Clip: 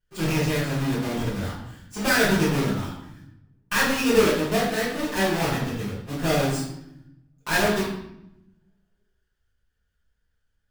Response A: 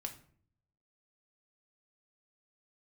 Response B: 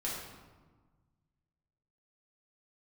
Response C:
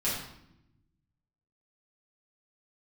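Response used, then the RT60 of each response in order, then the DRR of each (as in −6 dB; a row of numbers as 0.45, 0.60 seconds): C; 0.55, 1.4, 0.80 seconds; 3.5, −6.5, −10.5 decibels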